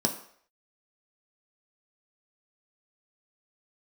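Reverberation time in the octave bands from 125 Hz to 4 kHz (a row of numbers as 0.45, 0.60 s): 0.35, 0.45, 0.60, 0.60, 0.60, 0.55 s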